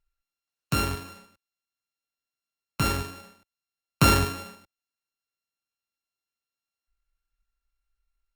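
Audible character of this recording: a buzz of ramps at a fixed pitch in blocks of 32 samples; Opus

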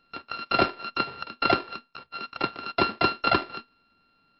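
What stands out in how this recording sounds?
a buzz of ramps at a fixed pitch in blocks of 32 samples; MP3

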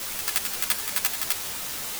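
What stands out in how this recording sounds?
tremolo triangle 8.7 Hz, depth 85%; a quantiser's noise floor 6-bit, dither triangular; a shimmering, thickened sound

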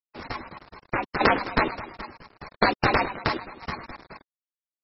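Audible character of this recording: a quantiser's noise floor 8-bit, dither none; tremolo saw down 0.83 Hz, depth 70%; aliases and images of a low sample rate 3200 Hz, jitter 20%; MP3

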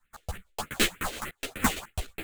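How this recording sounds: aliases and images of a low sample rate 5400 Hz, jitter 20%; phasing stages 4, 3.3 Hz, lowest notch 140–1000 Hz; tremolo triangle 8.7 Hz, depth 60%; a shimmering, thickened sound

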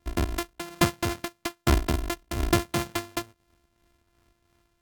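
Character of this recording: a buzz of ramps at a fixed pitch in blocks of 128 samples; tremolo triangle 2.9 Hz, depth 55%; AAC

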